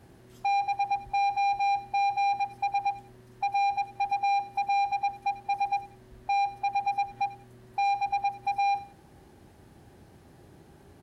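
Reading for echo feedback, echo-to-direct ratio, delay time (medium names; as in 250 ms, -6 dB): 25%, -17.5 dB, 91 ms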